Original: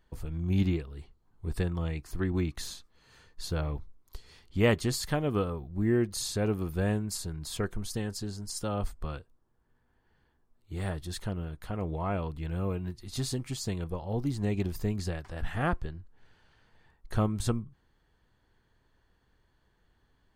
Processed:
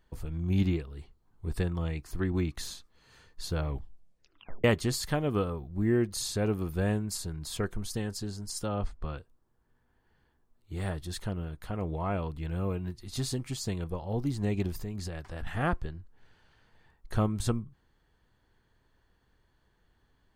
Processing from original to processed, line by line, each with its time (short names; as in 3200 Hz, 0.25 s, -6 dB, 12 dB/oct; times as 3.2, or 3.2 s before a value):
3.68 tape stop 0.96 s
8.66–9.18 air absorption 98 m
14.72–15.47 compressor, threshold -32 dBFS